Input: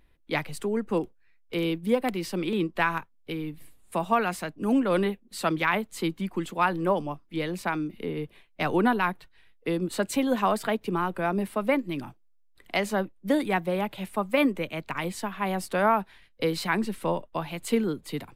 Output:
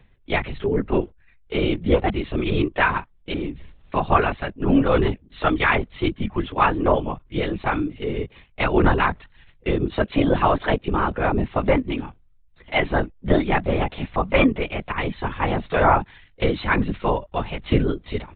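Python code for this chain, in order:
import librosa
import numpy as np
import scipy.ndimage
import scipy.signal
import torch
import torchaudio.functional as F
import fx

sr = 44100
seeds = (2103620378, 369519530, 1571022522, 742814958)

y = fx.lpc_vocoder(x, sr, seeds[0], excitation='whisper', order=16)
y = y * 10.0 ** (6.0 / 20.0)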